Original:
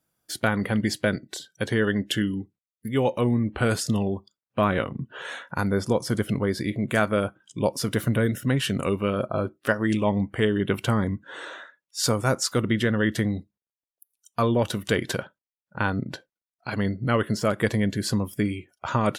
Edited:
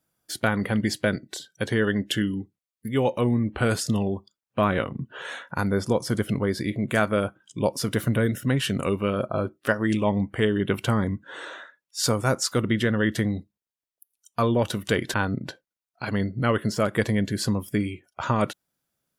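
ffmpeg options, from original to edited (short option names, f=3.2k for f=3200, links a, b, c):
-filter_complex "[0:a]asplit=2[a][b];[a]atrim=end=15.142[c];[b]atrim=start=15.788[d];[c][d]acrossfade=d=0.004:c1=hsin:c2=hsin"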